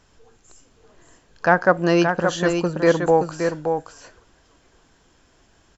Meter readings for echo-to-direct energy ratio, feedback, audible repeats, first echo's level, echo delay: −6.0 dB, repeats not evenly spaced, 1, −6.0 dB, 573 ms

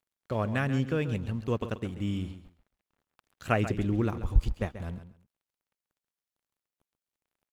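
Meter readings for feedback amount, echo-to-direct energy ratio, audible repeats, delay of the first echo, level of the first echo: 19%, −12.0 dB, 2, 135 ms, −12.0 dB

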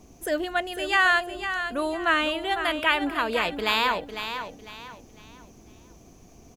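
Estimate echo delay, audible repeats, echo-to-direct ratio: 502 ms, 3, −8.5 dB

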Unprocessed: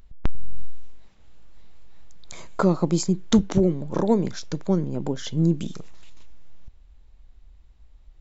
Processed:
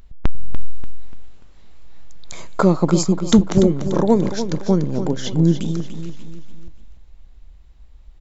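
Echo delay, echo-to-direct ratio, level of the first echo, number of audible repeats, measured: 292 ms, −9.0 dB, −10.0 dB, 4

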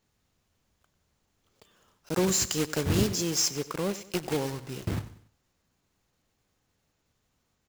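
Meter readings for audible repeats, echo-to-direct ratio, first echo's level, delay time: 3, −15.5 dB, −16.5 dB, 95 ms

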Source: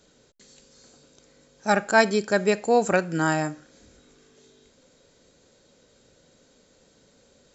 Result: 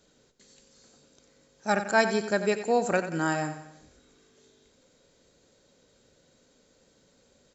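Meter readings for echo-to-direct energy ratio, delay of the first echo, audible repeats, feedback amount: −10.0 dB, 91 ms, 4, 47%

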